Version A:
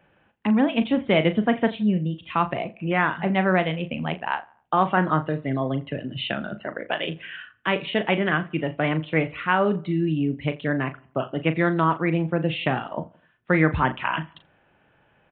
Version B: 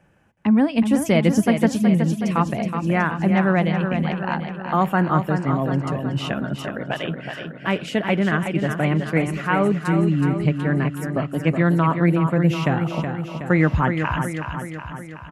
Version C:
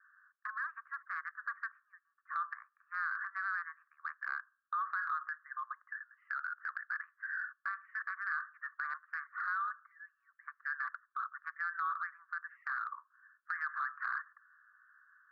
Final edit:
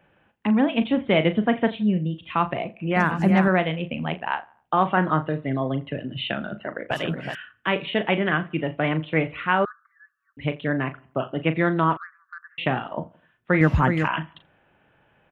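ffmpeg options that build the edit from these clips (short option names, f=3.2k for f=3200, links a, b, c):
-filter_complex "[1:a]asplit=3[a][b][c];[2:a]asplit=2[d][e];[0:a]asplit=6[f][g][h][i][j][k];[f]atrim=end=2.962[l];[a]atrim=start=2.958:end=3.482[m];[g]atrim=start=3.478:end=6.912[n];[b]atrim=start=6.908:end=7.352[o];[h]atrim=start=7.348:end=9.652[p];[d]atrim=start=9.648:end=10.372[q];[i]atrim=start=10.368:end=11.972[r];[e]atrim=start=11.968:end=12.582[s];[j]atrim=start=12.578:end=13.612[t];[c]atrim=start=13.608:end=14.082[u];[k]atrim=start=14.078[v];[l][m]acrossfade=d=0.004:c1=hsin:c2=hsin[w];[w][n]acrossfade=d=0.004:c1=hsin:c2=hsin[x];[x][o]acrossfade=d=0.004:c1=hsin:c2=hsin[y];[y][p]acrossfade=d=0.004:c1=hsin:c2=hsin[z];[z][q]acrossfade=d=0.004:c1=hsin:c2=hsin[aa];[aa][r]acrossfade=d=0.004:c1=hsin:c2=hsin[ab];[ab][s]acrossfade=d=0.004:c1=hsin:c2=hsin[ac];[ac][t]acrossfade=d=0.004:c1=hsin:c2=hsin[ad];[ad][u]acrossfade=d=0.004:c1=hsin:c2=hsin[ae];[ae][v]acrossfade=d=0.004:c1=hsin:c2=hsin"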